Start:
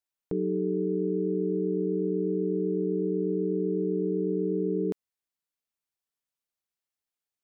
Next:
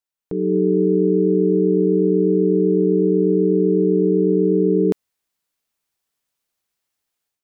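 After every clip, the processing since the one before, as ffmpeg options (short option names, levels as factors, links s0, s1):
-af "dynaudnorm=f=280:g=3:m=3.76"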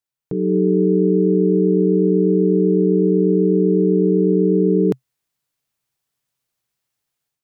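-af "equalizer=f=130:w=3:g=13"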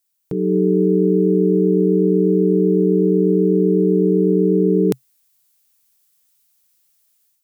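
-af "crystalizer=i=4.5:c=0"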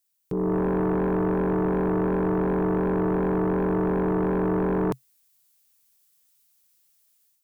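-af "asoftclip=type=tanh:threshold=0.355,aeval=exprs='0.355*(cos(1*acos(clip(val(0)/0.355,-1,1)))-cos(1*PI/2))+0.1*(cos(5*acos(clip(val(0)/0.355,-1,1)))-cos(5*PI/2))+0.0224*(cos(7*acos(clip(val(0)/0.355,-1,1)))-cos(7*PI/2))+0.00891*(cos(8*acos(clip(val(0)/0.355,-1,1)))-cos(8*PI/2))':c=same,volume=0.376"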